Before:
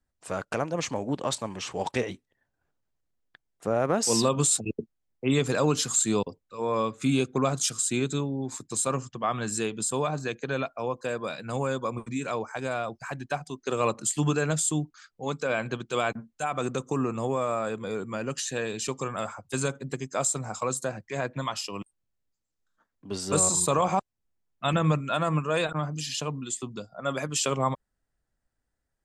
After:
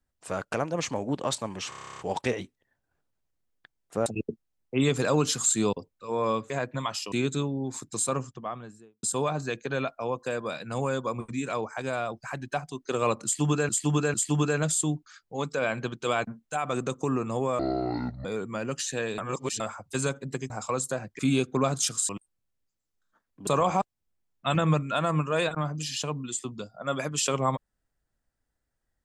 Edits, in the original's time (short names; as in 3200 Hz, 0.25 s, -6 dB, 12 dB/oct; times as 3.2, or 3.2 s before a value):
1.69 stutter 0.03 s, 11 plays
3.76–4.56 cut
7–7.9 swap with 21.12–21.74
8.74–9.81 studio fade out
14.02–14.47 loop, 3 plays
17.47–17.84 speed 56%
18.77–19.19 reverse
20.09–20.43 cut
23.12–23.65 cut